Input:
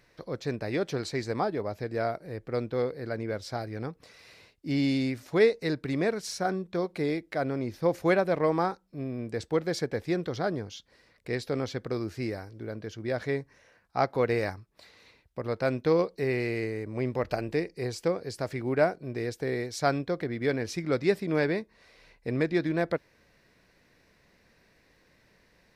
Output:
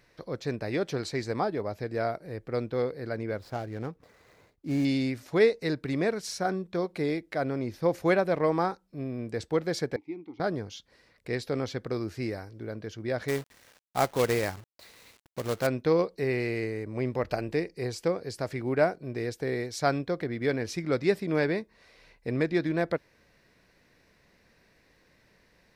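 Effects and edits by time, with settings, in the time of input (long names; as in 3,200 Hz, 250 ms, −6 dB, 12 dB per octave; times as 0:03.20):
0:03.37–0:04.85: running median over 15 samples
0:09.96–0:10.40: formant filter u
0:13.28–0:15.67: log-companded quantiser 4 bits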